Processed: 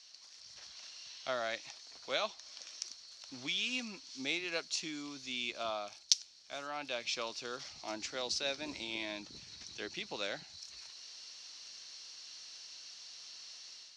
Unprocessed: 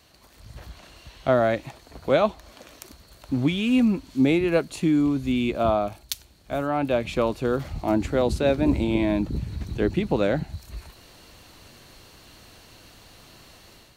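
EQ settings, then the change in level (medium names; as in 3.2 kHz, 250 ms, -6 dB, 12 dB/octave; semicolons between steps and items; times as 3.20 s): band-pass filter 5.5 kHz, Q 5.2; distance through air 99 m; +16.0 dB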